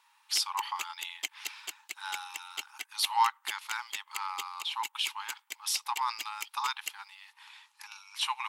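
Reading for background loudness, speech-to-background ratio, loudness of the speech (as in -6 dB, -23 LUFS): -41.0 LUFS, 7.0 dB, -34.0 LUFS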